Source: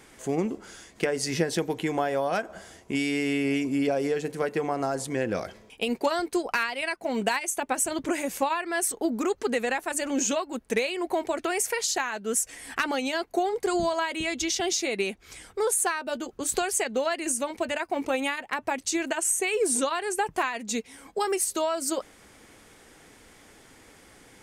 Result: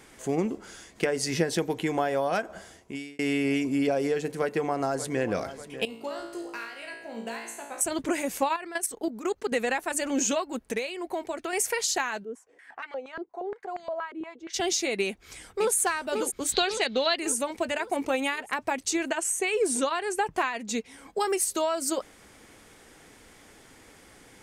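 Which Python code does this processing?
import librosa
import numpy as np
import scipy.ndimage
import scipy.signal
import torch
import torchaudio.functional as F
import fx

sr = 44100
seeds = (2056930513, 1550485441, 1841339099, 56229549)

y = fx.echo_throw(x, sr, start_s=4.39, length_s=0.9, ms=590, feedback_pct=60, wet_db=-13.5)
y = fx.comb_fb(y, sr, f0_hz=57.0, decay_s=0.84, harmonics='all', damping=0.0, mix_pct=90, at=(5.85, 7.81))
y = fx.level_steps(y, sr, step_db=13, at=(8.56, 9.52))
y = fx.filter_held_bandpass(y, sr, hz=8.5, low_hz=350.0, high_hz=2100.0, at=(12.23, 14.53), fade=0.02)
y = fx.echo_throw(y, sr, start_s=15.05, length_s=0.71, ms=550, feedback_pct=55, wet_db=-5.0)
y = fx.lowpass_res(y, sr, hz=3900.0, q=5.2, at=(16.52, 17.17))
y = fx.high_shelf(y, sr, hz=9000.0, db=-7.5, at=(18.93, 21.1))
y = fx.edit(y, sr, fx.fade_out_span(start_s=2.58, length_s=0.61),
    fx.clip_gain(start_s=10.72, length_s=0.81, db=-5.0), tone=tone)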